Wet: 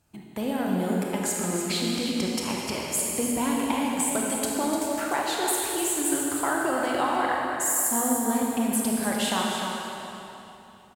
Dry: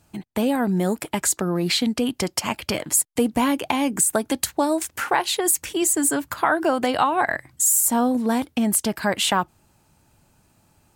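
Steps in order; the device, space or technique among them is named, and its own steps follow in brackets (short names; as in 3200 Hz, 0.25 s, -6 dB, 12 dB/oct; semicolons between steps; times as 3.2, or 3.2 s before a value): cave (echo 0.299 s -8.5 dB; reverb RT60 3.3 s, pre-delay 26 ms, DRR -2.5 dB); gain -9 dB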